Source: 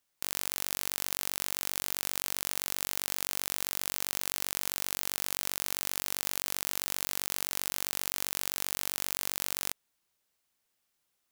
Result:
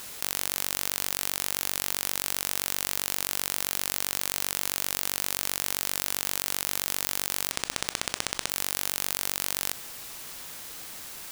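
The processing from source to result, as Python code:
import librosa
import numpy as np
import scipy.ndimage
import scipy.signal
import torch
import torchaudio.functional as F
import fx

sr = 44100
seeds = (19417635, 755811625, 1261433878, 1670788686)

p1 = fx.quant_dither(x, sr, seeds[0], bits=8, dither='triangular')
p2 = x + (p1 * 10.0 ** (1.0 / 20.0))
p3 = fx.resample_bad(p2, sr, factor=3, down='none', up='hold', at=(7.51, 8.5))
p4 = fx.env_flatten(p3, sr, amount_pct=50)
y = p4 * 10.0 ** (-5.0 / 20.0)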